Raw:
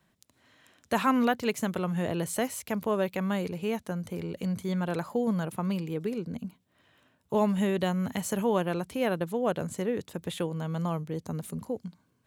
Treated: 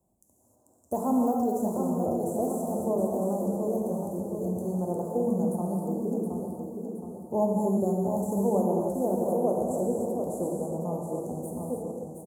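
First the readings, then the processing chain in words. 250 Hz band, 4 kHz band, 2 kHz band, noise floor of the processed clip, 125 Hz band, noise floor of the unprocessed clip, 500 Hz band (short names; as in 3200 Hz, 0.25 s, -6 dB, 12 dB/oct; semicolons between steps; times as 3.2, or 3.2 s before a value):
+2.0 dB, under -25 dB, under -30 dB, -65 dBFS, -1.0 dB, -71 dBFS, +3.5 dB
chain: elliptic band-stop 790–7400 Hz, stop band 60 dB; de-esser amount 85%; bell 150 Hz -8 dB 0.65 oct; feedback echo 0.719 s, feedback 46%, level -6.5 dB; non-linear reverb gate 0.34 s flat, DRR -1 dB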